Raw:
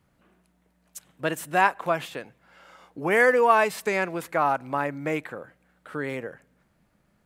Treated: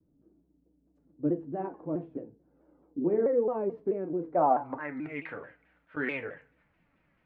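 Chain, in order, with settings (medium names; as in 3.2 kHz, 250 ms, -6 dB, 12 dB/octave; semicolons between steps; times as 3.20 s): low-pass sweep 340 Hz -> 2.4 kHz, 4.17–4.96 s; 4.44–5.97 s: slow attack 267 ms; FDN reverb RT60 0.31 s, low-frequency decay 0.95×, high-frequency decay 0.85×, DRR 3.5 dB; vibrato with a chosen wave saw down 4.6 Hz, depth 160 cents; trim -6 dB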